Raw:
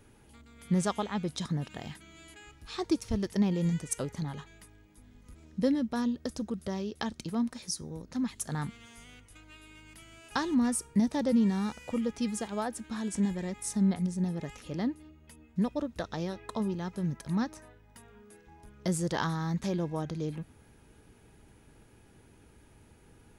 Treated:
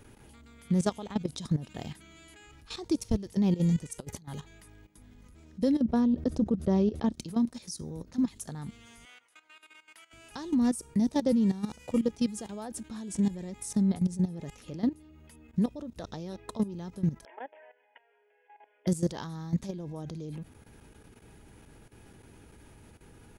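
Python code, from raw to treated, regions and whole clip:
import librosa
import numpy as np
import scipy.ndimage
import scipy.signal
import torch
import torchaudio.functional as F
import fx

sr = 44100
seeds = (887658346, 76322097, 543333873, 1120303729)

y = fx.chain(x, sr, fx.high_shelf(hz=7300.0, db=11.5),
    fx.over_compress(threshold_db=-40.0, ratio=-0.5), at=(4.0, 4.4))
y = fx.chain(y, sr, fx.lowpass(hz=1200.0, slope=6),
    fx.env_flatten(amount_pct=70), at=(5.81, 7.12))
y = fx.chain(y, sr, fx.highpass(hz=850.0, slope=12),
    fx.high_shelf(hz=2800.0, db=-8.5), at=(9.05, 10.13))
y = fx.chain(y, sr, fx.brickwall_bandpass(low_hz=270.0, high_hz=3500.0),
    fx.fixed_phaser(hz=1200.0, stages=6), at=(17.25, 18.87))
y = fx.dynamic_eq(y, sr, hz=1600.0, q=0.74, threshold_db=-52.0, ratio=4.0, max_db=-8)
y = fx.level_steps(y, sr, step_db=15)
y = y * librosa.db_to_amplitude(6.5)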